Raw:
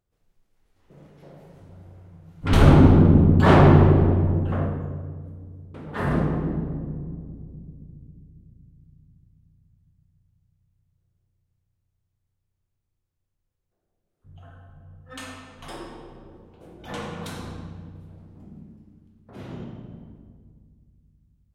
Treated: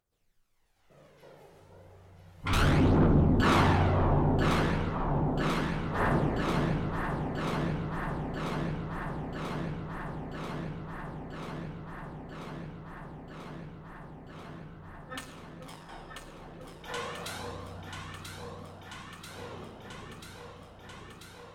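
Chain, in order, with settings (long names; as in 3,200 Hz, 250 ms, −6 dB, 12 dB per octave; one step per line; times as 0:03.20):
low-shelf EQ 500 Hz −12 dB
soft clipping −22.5 dBFS, distortion −10 dB
phase shifter 0.33 Hz, delay 2.5 ms, feedback 44%
0:15.19–0:15.89: power curve on the samples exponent 2
on a send: delay that swaps between a low-pass and a high-pass 494 ms, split 1,000 Hz, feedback 89%, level −4 dB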